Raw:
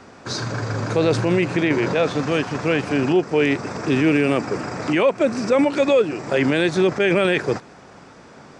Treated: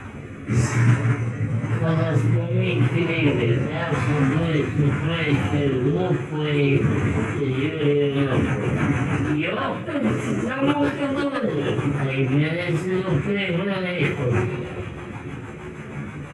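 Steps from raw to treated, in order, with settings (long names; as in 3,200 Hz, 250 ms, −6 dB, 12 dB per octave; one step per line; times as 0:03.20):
on a send at −16 dB: convolution reverb RT60 2.4 s, pre-delay 4 ms
on the sum: time stretch by phase vocoder 1.9×
bass and treble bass +8 dB, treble −2 dB
reversed playback
downward compressor 6 to 1, threshold −27 dBFS, peak gain reduction 15 dB
reversed playback
notch filter 3,600 Hz, Q 5.5
far-end echo of a speakerphone 120 ms, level −15 dB
rotating-speaker cabinet horn 0.9 Hz, later 6.3 Hz, at 0:07.05
graphic EQ with 15 bands 100 Hz +7 dB, 1,600 Hz +8 dB, 4,000 Hz −10 dB
ambience of single reflections 14 ms −4 dB, 49 ms −6 dB
formants moved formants +4 semitones
comb filter 0.8 ms, depth 44%
highs frequency-modulated by the lows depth 0.15 ms
level +6 dB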